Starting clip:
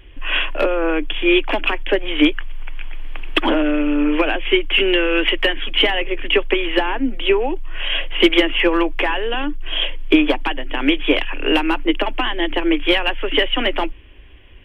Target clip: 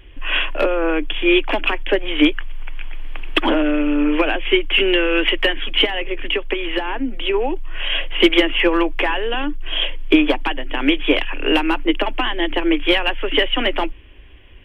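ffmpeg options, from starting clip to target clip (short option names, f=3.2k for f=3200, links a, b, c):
-filter_complex "[0:a]asplit=3[a][b][c];[a]afade=t=out:st=5.84:d=0.02[d];[b]acompressor=threshold=-17dB:ratio=6,afade=t=in:st=5.84:d=0.02,afade=t=out:st=7.33:d=0.02[e];[c]afade=t=in:st=7.33:d=0.02[f];[d][e][f]amix=inputs=3:normalize=0"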